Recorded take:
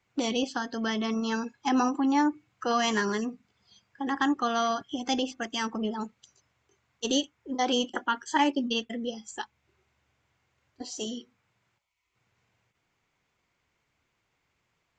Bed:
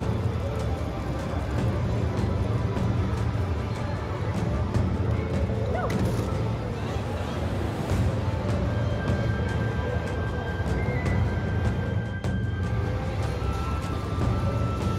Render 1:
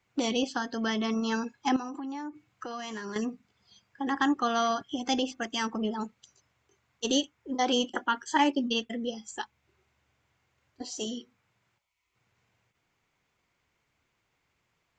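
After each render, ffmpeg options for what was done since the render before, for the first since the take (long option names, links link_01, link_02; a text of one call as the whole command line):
ffmpeg -i in.wav -filter_complex "[0:a]asettb=1/sr,asplit=3[link_01][link_02][link_03];[link_01]atrim=end=1.764[link_04];[link_02]atrim=start=1.76:end=3.16,asetpts=PTS-STARTPTS,afade=type=in:duration=0.004:curve=qsin,afade=type=out:start_time=1.396:duration=0.004:curve=qsin,acompressor=threshold=-35dB:ratio=5:attack=3.2:release=140:knee=1:detection=peak[link_05];[link_03]atrim=start=3.156[link_06];[link_04][link_05]acrossfade=duration=0.004:curve1=hsin:curve2=qsin[link_07];[link_07][link_06]acrossfade=duration=0.004:curve1=qsin:curve2=hsin" out.wav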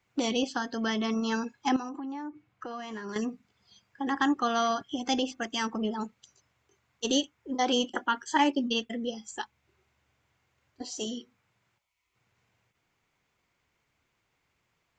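ffmpeg -i in.wav -filter_complex "[0:a]asettb=1/sr,asplit=3[link_01][link_02][link_03];[link_01]atrim=end=1.894[link_04];[link_02]atrim=start=1.89:end=3.09,asetpts=PTS-STARTPTS,afade=type=in:duration=0.004:curve=qsin,afade=type=out:start_time=1.196:duration=0.004:curve=qsin,lowpass=frequency=2200:poles=1[link_05];[link_03]atrim=start=3.086[link_06];[link_04][link_05]acrossfade=duration=0.004:curve1=hsin:curve2=qsin[link_07];[link_07][link_06]acrossfade=duration=0.004:curve1=qsin:curve2=hsin" out.wav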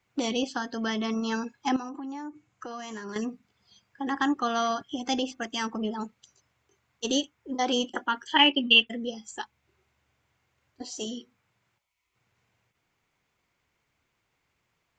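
ffmpeg -i in.wav -filter_complex "[0:a]asettb=1/sr,asplit=3[link_01][link_02][link_03];[link_01]atrim=end=2.014[link_04];[link_02]atrim=start=2.01:end=3.04,asetpts=PTS-STARTPTS,afade=type=in:duration=0.004:curve=qsin,afade=type=out:start_time=1.026:duration=0.004:curve=qsin,lowpass=frequency=7000:width_type=q:width=4.6[link_05];[link_03]atrim=start=3.036[link_06];[link_04][link_05]acrossfade=duration=0.004:curve1=hsin:curve2=qsin[link_07];[link_07][link_06]acrossfade=duration=0.004:curve1=qsin:curve2=hsin,asettb=1/sr,asplit=3[link_08][link_09][link_10];[link_08]atrim=end=8.274[link_11];[link_09]atrim=start=8.27:end=8.87,asetpts=PTS-STARTPTS,afade=type=in:duration=0.004:curve=qsin,afade=type=out:start_time=0.596:duration=0.004:curve=qsin,lowpass=frequency=2900:width_type=q:width=7.9[link_12];[link_10]atrim=start=8.866[link_13];[link_11][link_12]acrossfade=duration=0.004:curve1=hsin:curve2=qsin[link_14];[link_14][link_13]acrossfade=duration=0.004:curve1=qsin:curve2=hsin" out.wav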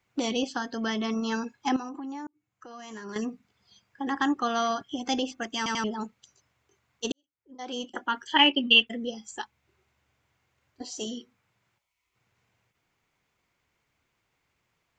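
ffmpeg -i in.wav -filter_complex "[0:a]asplit=6[link_01][link_02][link_03][link_04][link_05][link_06];[link_01]atrim=end=2.27,asetpts=PTS-STARTPTS,afade=type=out:start_time=2.266:duration=0.004:curve=hsin[link_07];[link_02]atrim=start=2.27:end=5.662,asetpts=PTS-STARTPTS,afade=type=in:duration=0.93[link_08];[link_03]atrim=start=5.568:end=5.662[link_09];[link_04]atrim=start=5.568:end=5.662[link_10];[link_05]atrim=start=5.838:end=7.12,asetpts=PTS-STARTPTS,afade=type=out:start_time=1.278:duration=0.004:curve=hsin[link_11];[link_06]atrim=start=7.12,asetpts=PTS-STARTPTS,afade=type=in:duration=1.03:curve=qua[link_12];[link_07][link_08]concat=n=2:v=0:a=1[link_13];[link_13][link_09]acrossfade=duration=0.004:curve1=hsin:curve2=hsin[link_14];[link_14][link_10]acrossfade=duration=0.004:curve1=hsin:curve2=hsin[link_15];[link_11][link_12]concat=n=2:v=0:a=1[link_16];[link_15][link_16]acrossfade=duration=0.004:curve1=hsin:curve2=hsin" out.wav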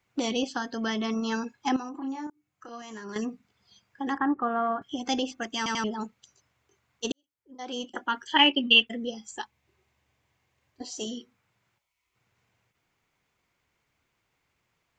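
ffmpeg -i in.wav -filter_complex "[0:a]asettb=1/sr,asplit=3[link_01][link_02][link_03];[link_01]atrim=end=1.984[link_04];[link_02]atrim=start=1.98:end=2.82,asetpts=PTS-STARTPTS,afade=type=in:duration=0.004:curve=qsin,afade=type=out:start_time=0.836:duration=0.004:curve=qsin,asplit=2[link_05][link_06];[link_06]adelay=30,volume=-3dB[link_07];[link_05][link_07]amix=inputs=2:normalize=0,atrim=end_sample=37044[link_08];[link_03]atrim=start=2.816[link_09];[link_04][link_08]acrossfade=duration=0.004:curve1=hsin:curve2=qsin[link_10];[link_10][link_09]acrossfade=duration=0.004:curve1=qsin:curve2=hsin,asettb=1/sr,asplit=3[link_11][link_12][link_13];[link_11]atrim=end=4.184[link_14];[link_12]atrim=start=4.18:end=4.82,asetpts=PTS-STARTPTS,afade=type=in:duration=0.004:curve=qsin,afade=type=out:start_time=0.636:duration=0.004:curve=qsin,lowpass=frequency=1700:width=0.5412,lowpass=frequency=1700:width=1.3066[link_15];[link_13]atrim=start=4.816[link_16];[link_14][link_15]acrossfade=duration=0.004:curve1=hsin:curve2=qsin[link_17];[link_17][link_16]acrossfade=duration=0.004:curve1=qsin:curve2=hsin,asettb=1/sr,asplit=3[link_18][link_19][link_20];[link_18]atrim=end=9.334[link_21];[link_19]atrim=start=9.33:end=10.85,asetpts=PTS-STARTPTS,afade=type=in:duration=0.004:curve=qsin,afade=type=out:start_time=1.516:duration=0.004:curve=qsin,bandreject=frequency=1400:width=8.4[link_22];[link_20]atrim=start=10.846[link_23];[link_21][link_22]acrossfade=duration=0.004:curve1=hsin:curve2=qsin[link_24];[link_24][link_23]acrossfade=duration=0.004:curve1=qsin:curve2=hsin" out.wav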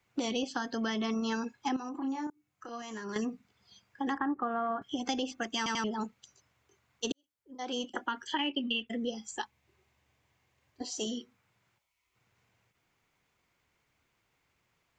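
ffmpeg -i in.wav -filter_complex "[0:a]acrossover=split=360[link_01][link_02];[link_02]alimiter=limit=-18dB:level=0:latency=1:release=175[link_03];[link_01][link_03]amix=inputs=2:normalize=0,acompressor=threshold=-29dB:ratio=5" out.wav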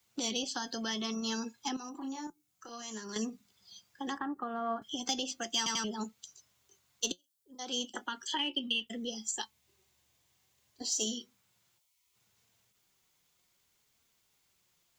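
ffmpeg -i in.wav -filter_complex "[0:a]acrossover=split=160|2000[link_01][link_02][link_03];[link_03]aexciter=amount=2:drive=9.3:freq=3100[link_04];[link_01][link_02][link_04]amix=inputs=3:normalize=0,flanger=delay=4.3:depth=1.5:regen=73:speed=0.64:shape=triangular" out.wav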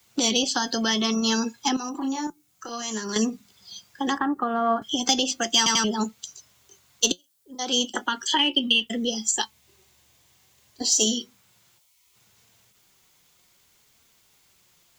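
ffmpeg -i in.wav -af "volume=12dB" out.wav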